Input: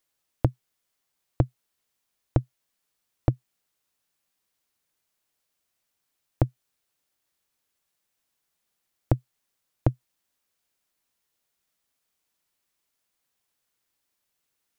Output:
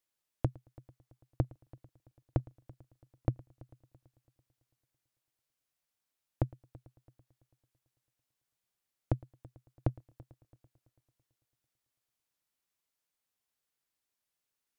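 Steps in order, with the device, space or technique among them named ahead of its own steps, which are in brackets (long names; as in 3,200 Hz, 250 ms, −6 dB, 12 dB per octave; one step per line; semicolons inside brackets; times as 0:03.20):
multi-head tape echo (echo machine with several playback heads 111 ms, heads first and third, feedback 52%, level −23 dB; tape wow and flutter 18 cents)
level −8.5 dB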